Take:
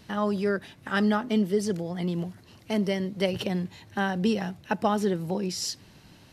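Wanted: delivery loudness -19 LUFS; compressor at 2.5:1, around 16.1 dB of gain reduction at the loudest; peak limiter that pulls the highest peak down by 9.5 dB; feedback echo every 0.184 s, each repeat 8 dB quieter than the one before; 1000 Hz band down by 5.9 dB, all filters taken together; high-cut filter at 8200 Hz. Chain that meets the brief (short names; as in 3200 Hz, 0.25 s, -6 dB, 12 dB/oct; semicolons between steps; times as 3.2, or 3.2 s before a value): LPF 8200 Hz; bell 1000 Hz -8 dB; compressor 2.5:1, threshold -46 dBFS; limiter -34.5 dBFS; feedback echo 0.184 s, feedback 40%, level -8 dB; gain +25 dB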